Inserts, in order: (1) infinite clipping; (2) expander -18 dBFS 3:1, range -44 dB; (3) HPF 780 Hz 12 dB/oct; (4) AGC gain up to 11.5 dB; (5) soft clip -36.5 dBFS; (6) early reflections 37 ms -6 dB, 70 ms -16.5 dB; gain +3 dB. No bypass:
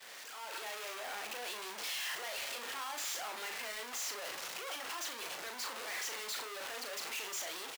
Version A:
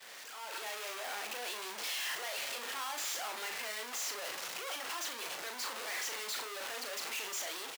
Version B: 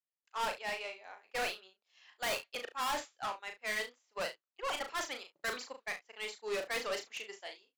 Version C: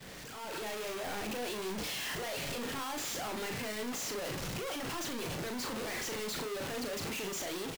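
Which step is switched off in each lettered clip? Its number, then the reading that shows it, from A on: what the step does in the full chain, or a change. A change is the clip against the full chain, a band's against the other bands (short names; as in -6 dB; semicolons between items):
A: 5, distortion -19 dB; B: 1, 8 kHz band -10.5 dB; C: 3, 250 Hz band +17.5 dB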